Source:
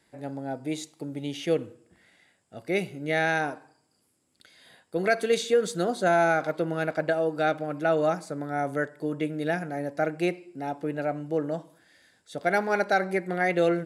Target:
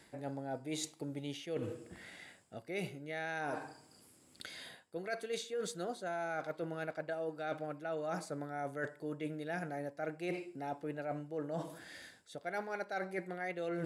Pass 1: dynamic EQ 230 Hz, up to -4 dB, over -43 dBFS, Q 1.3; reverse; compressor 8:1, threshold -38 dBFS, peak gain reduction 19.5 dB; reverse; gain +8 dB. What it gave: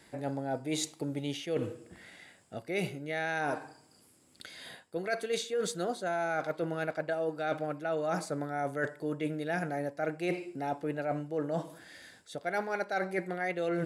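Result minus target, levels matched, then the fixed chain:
compressor: peak gain reduction -6.5 dB
dynamic EQ 230 Hz, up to -4 dB, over -43 dBFS, Q 1.3; reverse; compressor 8:1, threshold -45.5 dBFS, peak gain reduction 26 dB; reverse; gain +8 dB

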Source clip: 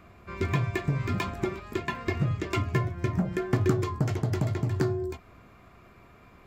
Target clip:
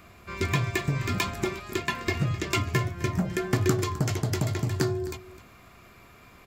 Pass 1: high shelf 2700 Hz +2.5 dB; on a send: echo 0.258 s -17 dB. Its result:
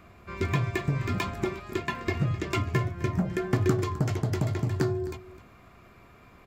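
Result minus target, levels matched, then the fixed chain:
4000 Hz band -5.5 dB
high shelf 2700 Hz +12.5 dB; on a send: echo 0.258 s -17 dB

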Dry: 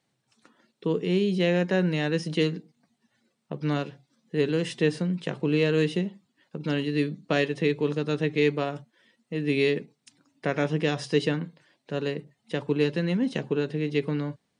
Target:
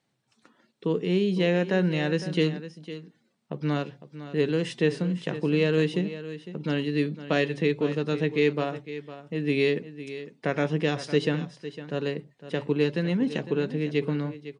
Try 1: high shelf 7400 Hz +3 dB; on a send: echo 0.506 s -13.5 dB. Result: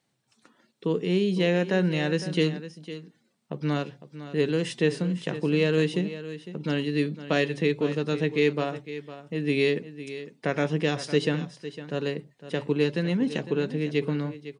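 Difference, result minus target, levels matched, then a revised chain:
8000 Hz band +4.0 dB
high shelf 7400 Hz -5.5 dB; on a send: echo 0.506 s -13.5 dB

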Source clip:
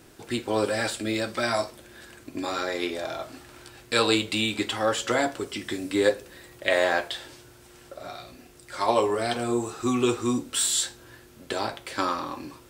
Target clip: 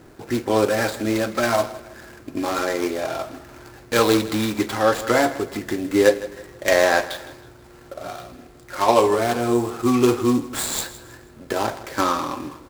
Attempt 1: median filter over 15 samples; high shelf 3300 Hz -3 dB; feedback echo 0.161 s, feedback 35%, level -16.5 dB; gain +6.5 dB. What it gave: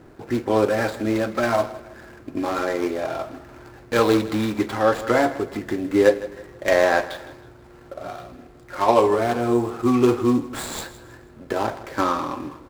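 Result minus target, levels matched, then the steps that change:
8000 Hz band -7.5 dB
change: high shelf 3300 Hz +6.5 dB

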